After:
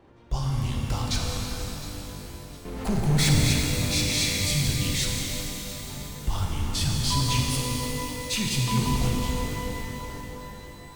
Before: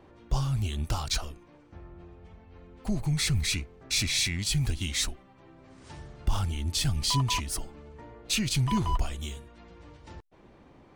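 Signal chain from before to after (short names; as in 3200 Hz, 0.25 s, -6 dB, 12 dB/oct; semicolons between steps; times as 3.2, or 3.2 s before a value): 2.65–3.44 power-law curve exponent 0.5; echo with dull and thin repeats by turns 0.355 s, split 2500 Hz, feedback 59%, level -13 dB; shimmer reverb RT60 3.8 s, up +12 st, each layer -8 dB, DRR -1.5 dB; gain -1.5 dB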